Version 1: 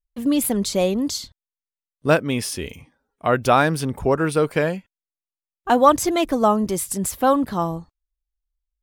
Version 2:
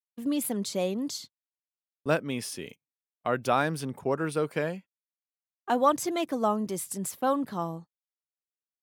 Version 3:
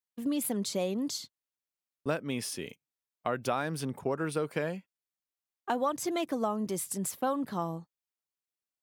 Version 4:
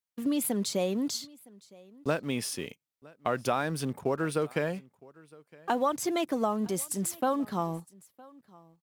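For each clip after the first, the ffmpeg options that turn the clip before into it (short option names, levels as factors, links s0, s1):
-af "highpass=f=120:w=0.5412,highpass=f=120:w=1.3066,agate=range=0.00891:threshold=0.02:ratio=16:detection=peak,volume=0.355"
-af "acompressor=threshold=0.0447:ratio=4"
-filter_complex "[0:a]asplit=2[s0][s1];[s1]aeval=exprs='val(0)*gte(abs(val(0)),0.01)':c=same,volume=0.316[s2];[s0][s2]amix=inputs=2:normalize=0,aecho=1:1:962:0.0631"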